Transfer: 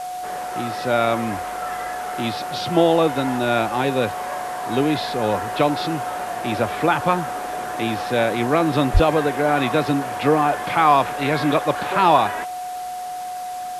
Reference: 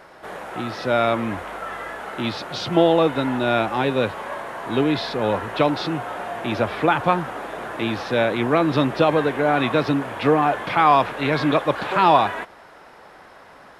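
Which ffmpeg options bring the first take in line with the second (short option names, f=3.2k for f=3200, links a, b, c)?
-filter_complex "[0:a]bandreject=f=730:w=30,asplit=3[a][b][c];[a]afade=t=out:st=8.93:d=0.02[d];[b]highpass=f=140:w=0.5412,highpass=f=140:w=1.3066,afade=t=in:st=8.93:d=0.02,afade=t=out:st=9.05:d=0.02[e];[c]afade=t=in:st=9.05:d=0.02[f];[d][e][f]amix=inputs=3:normalize=0,afwtdn=0.0089"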